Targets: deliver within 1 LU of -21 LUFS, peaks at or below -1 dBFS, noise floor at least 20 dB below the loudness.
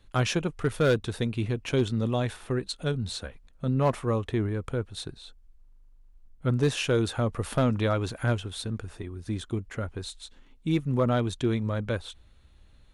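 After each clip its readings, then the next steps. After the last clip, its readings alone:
clipped 0.4%; flat tops at -16.5 dBFS; loudness -29.0 LUFS; peak -16.5 dBFS; loudness target -21.0 LUFS
-> clip repair -16.5 dBFS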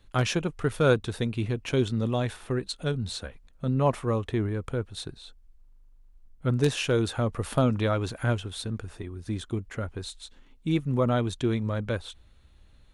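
clipped 0.0%; loudness -28.5 LUFS; peak -7.5 dBFS; loudness target -21.0 LUFS
-> gain +7.5 dB; limiter -1 dBFS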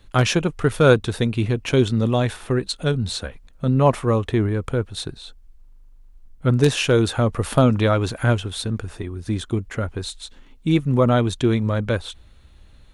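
loudness -21.0 LUFS; peak -1.0 dBFS; noise floor -48 dBFS

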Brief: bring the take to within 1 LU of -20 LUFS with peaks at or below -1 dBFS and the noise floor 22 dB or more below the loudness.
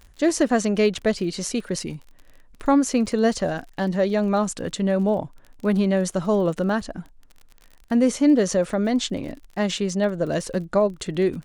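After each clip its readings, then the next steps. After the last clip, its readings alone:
ticks 38/s; loudness -23.0 LUFS; peak -7.0 dBFS; loudness target -20.0 LUFS
-> de-click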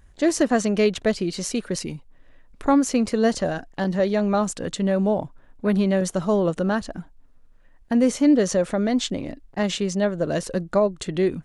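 ticks 0/s; loudness -23.0 LUFS; peak -7.0 dBFS; loudness target -20.0 LUFS
-> gain +3 dB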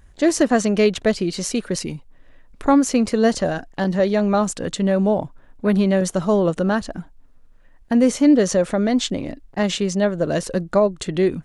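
loudness -20.0 LUFS; peak -4.0 dBFS; noise floor -49 dBFS

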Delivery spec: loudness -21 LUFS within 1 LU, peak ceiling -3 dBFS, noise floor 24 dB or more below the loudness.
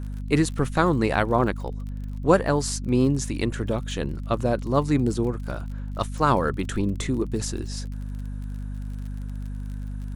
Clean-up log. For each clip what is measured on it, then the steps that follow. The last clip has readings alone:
ticks 37/s; hum 50 Hz; harmonics up to 250 Hz; hum level -29 dBFS; loudness -25.5 LUFS; peak -3.5 dBFS; loudness target -21.0 LUFS
-> de-click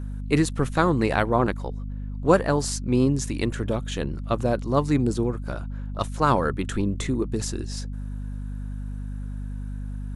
ticks 0/s; hum 50 Hz; harmonics up to 250 Hz; hum level -29 dBFS
-> de-hum 50 Hz, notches 5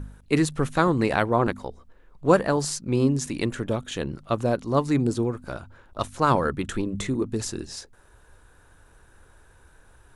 hum none; loudness -25.0 LUFS; peak -4.5 dBFS; loudness target -21.0 LUFS
-> gain +4 dB; limiter -3 dBFS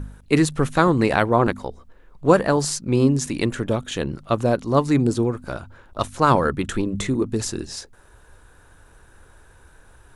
loudness -21.0 LUFS; peak -3.0 dBFS; noise floor -52 dBFS

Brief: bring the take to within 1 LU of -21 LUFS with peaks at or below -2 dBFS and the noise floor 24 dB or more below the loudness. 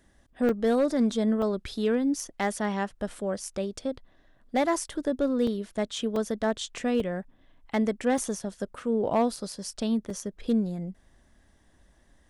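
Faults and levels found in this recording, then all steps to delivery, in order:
clipped 0.3%; flat tops at -17.0 dBFS; dropouts 8; longest dropout 2.9 ms; loudness -28.5 LUFS; peak -17.0 dBFS; loudness target -21.0 LUFS
-> clip repair -17 dBFS; interpolate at 0.49/1.42/5.47/6.16/7/8.18/9.36/10.1, 2.9 ms; gain +7.5 dB

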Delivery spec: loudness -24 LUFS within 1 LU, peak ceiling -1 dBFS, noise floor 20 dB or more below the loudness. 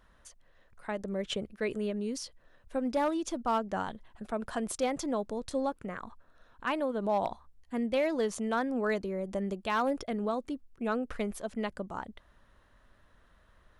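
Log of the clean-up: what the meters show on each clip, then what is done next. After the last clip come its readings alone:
clipped 0.3%; flat tops at -21.5 dBFS; loudness -33.5 LUFS; peak -21.5 dBFS; loudness target -24.0 LUFS
-> clip repair -21.5 dBFS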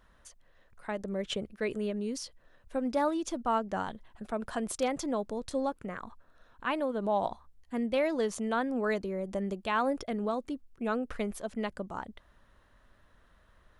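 clipped 0.0%; loudness -33.5 LUFS; peak -16.0 dBFS; loudness target -24.0 LUFS
-> gain +9.5 dB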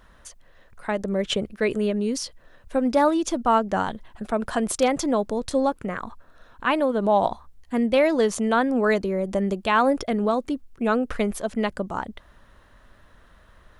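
loudness -24.0 LUFS; peak -6.5 dBFS; noise floor -54 dBFS

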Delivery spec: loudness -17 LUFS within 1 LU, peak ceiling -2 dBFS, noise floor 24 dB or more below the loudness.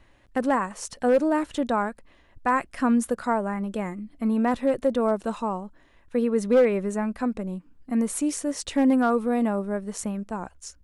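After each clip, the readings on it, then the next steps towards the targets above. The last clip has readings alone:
clipped 0.3%; flat tops at -13.0 dBFS; loudness -25.5 LUFS; peak -13.0 dBFS; loudness target -17.0 LUFS
-> clip repair -13 dBFS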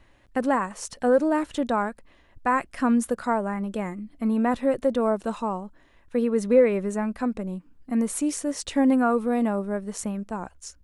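clipped 0.0%; loudness -25.5 LUFS; peak -8.0 dBFS; loudness target -17.0 LUFS
-> gain +8.5 dB; limiter -2 dBFS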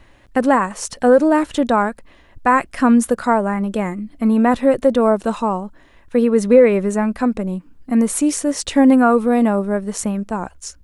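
loudness -17.0 LUFS; peak -2.0 dBFS; noise floor -49 dBFS

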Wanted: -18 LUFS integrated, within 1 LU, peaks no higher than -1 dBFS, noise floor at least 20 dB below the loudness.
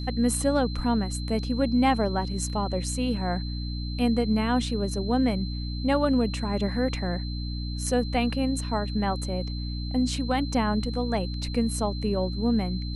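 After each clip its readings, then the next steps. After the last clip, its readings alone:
hum 60 Hz; harmonics up to 300 Hz; hum level -29 dBFS; steady tone 4100 Hz; tone level -40 dBFS; loudness -27.0 LUFS; peak -10.5 dBFS; loudness target -18.0 LUFS
-> de-hum 60 Hz, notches 5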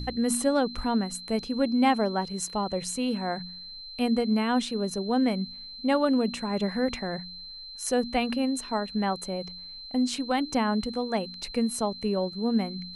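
hum none; steady tone 4100 Hz; tone level -40 dBFS
-> notch 4100 Hz, Q 30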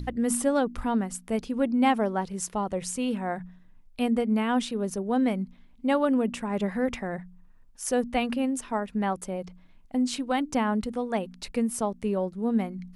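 steady tone none; loudness -28.0 LUFS; peak -11.5 dBFS; loudness target -18.0 LUFS
-> gain +10 dB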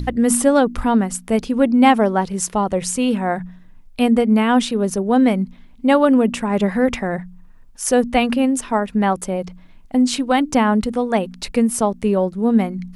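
loudness -18.0 LUFS; peak -1.5 dBFS; noise floor -44 dBFS

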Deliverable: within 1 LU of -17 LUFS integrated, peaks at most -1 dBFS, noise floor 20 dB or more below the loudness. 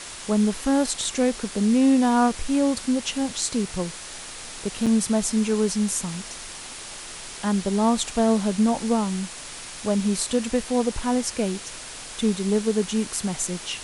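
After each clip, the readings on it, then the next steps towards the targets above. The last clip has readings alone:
dropouts 1; longest dropout 6.4 ms; noise floor -38 dBFS; noise floor target -44 dBFS; loudness -23.5 LUFS; peak -8.0 dBFS; loudness target -17.0 LUFS
-> interpolate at 4.86, 6.4 ms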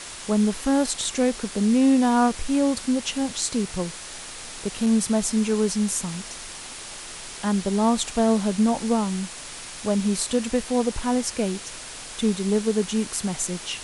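dropouts 0; noise floor -38 dBFS; noise floor target -44 dBFS
-> denoiser 6 dB, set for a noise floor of -38 dBFS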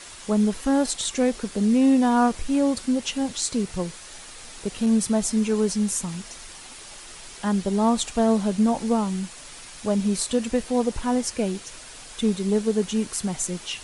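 noise floor -42 dBFS; noise floor target -44 dBFS
-> denoiser 6 dB, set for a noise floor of -42 dBFS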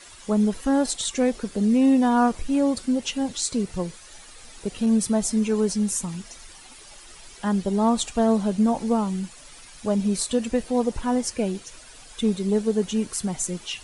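noise floor -46 dBFS; loudness -23.5 LUFS; peak -9.0 dBFS; loudness target -17.0 LUFS
-> gain +6.5 dB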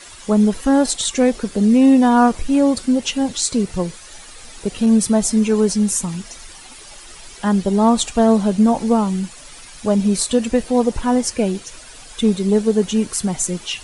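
loudness -17.0 LUFS; peak -2.5 dBFS; noise floor -39 dBFS

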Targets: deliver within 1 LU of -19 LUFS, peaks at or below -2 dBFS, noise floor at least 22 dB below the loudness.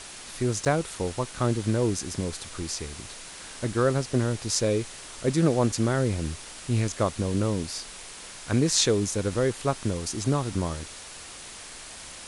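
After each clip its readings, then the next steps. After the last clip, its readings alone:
dropouts 1; longest dropout 7.4 ms; noise floor -43 dBFS; noise floor target -49 dBFS; loudness -27.0 LUFS; peak -6.0 dBFS; loudness target -19.0 LUFS
-> interpolate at 0.65, 7.4 ms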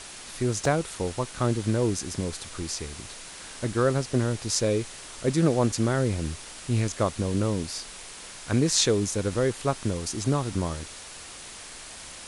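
dropouts 0; noise floor -43 dBFS; noise floor target -49 dBFS
-> denoiser 6 dB, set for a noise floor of -43 dBFS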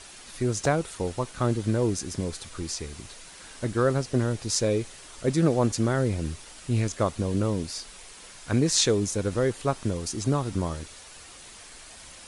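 noise floor -47 dBFS; noise floor target -49 dBFS
-> denoiser 6 dB, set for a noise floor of -47 dBFS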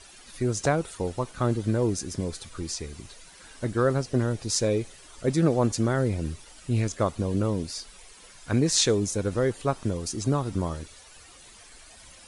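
noise floor -50 dBFS; loudness -27.0 LUFS; peak -6.0 dBFS; loudness target -19.0 LUFS
-> gain +8 dB; limiter -2 dBFS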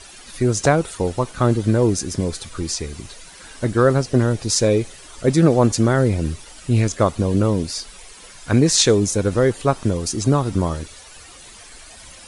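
loudness -19.0 LUFS; peak -2.0 dBFS; noise floor -42 dBFS

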